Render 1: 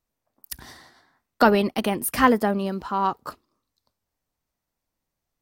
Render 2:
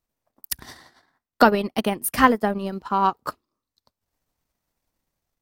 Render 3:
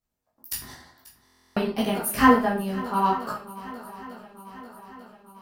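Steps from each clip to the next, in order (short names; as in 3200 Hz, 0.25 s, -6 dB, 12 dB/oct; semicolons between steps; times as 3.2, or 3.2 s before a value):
transient shaper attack +4 dB, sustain -11 dB; AGC gain up to 4.5 dB
swung echo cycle 0.895 s, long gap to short 1.5:1, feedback 58%, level -19 dB; reverb RT60 0.40 s, pre-delay 11 ms, DRR -5 dB; stuck buffer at 1.24, samples 1024, times 13; gain -7.5 dB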